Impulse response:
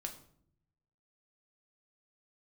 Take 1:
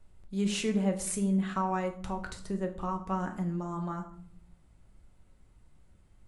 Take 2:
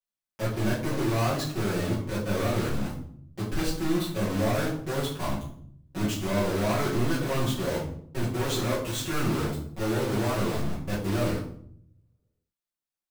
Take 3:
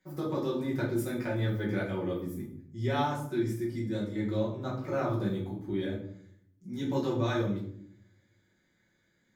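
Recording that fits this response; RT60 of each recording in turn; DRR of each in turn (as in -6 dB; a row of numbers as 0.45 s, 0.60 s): 1; 0.65 s, 0.65 s, 0.65 s; 3.5 dB, -10.5 dB, -6.0 dB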